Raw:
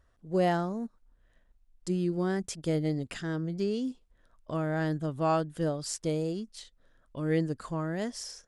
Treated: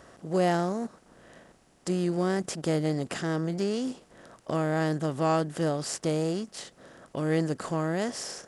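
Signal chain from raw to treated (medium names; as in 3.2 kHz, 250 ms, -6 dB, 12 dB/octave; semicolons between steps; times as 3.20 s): spectral levelling over time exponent 0.6; high-pass 64 Hz 12 dB/octave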